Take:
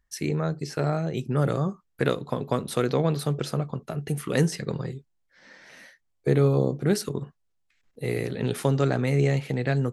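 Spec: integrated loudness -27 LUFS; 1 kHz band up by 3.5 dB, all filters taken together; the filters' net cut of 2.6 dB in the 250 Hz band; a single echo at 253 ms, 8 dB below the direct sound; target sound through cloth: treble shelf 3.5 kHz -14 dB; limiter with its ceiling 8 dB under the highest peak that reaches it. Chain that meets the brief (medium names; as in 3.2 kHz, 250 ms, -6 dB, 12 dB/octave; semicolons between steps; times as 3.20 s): peaking EQ 250 Hz -4.5 dB; peaking EQ 1 kHz +6.5 dB; peak limiter -14.5 dBFS; treble shelf 3.5 kHz -14 dB; delay 253 ms -8 dB; trim +2 dB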